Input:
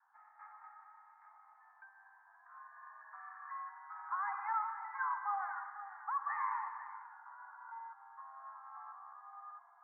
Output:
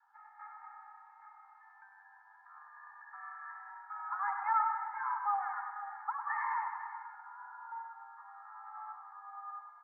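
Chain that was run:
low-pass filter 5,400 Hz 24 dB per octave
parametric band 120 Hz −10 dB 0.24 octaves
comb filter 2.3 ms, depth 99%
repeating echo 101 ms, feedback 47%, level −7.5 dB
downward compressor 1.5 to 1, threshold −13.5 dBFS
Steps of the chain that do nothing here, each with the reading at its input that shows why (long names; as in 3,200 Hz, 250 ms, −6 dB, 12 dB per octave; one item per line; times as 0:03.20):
low-pass filter 5,400 Hz: nothing at its input above 2,200 Hz
parametric band 120 Hz: nothing at its input below 680 Hz
downward compressor, threshold −13.5 dBFS: peak of its input −19.5 dBFS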